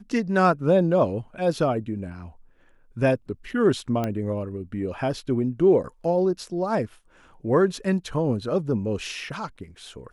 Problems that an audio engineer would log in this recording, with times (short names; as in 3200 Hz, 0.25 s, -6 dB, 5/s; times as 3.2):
4.04 pop -14 dBFS